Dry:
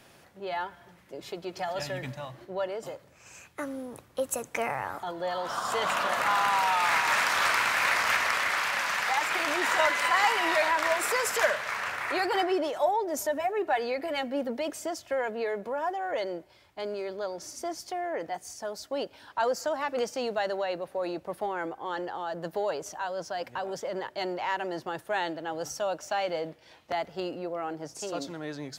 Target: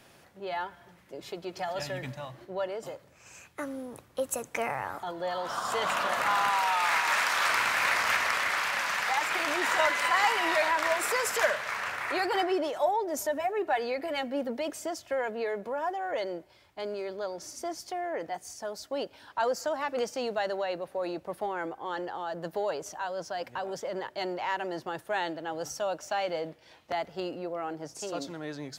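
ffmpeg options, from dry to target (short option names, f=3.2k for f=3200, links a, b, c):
-filter_complex "[0:a]asettb=1/sr,asplit=3[a][b][c];[a]atrim=end=6.514[d];[b]atrim=start=6.51:end=7.5,asetpts=PTS-STARTPTS,afade=t=in:d=0.004:c=qsin,afade=t=out:st=0.986:d=0.004:c=qsin,lowshelf=f=260:g=-8.5[e];[c]atrim=start=7.496[f];[d][e]acrossfade=d=0.004:c1=hsin:c2=qsin[g];[g][f]acrossfade=d=0.004:c1=qsin:c2=hsin,volume=-1dB"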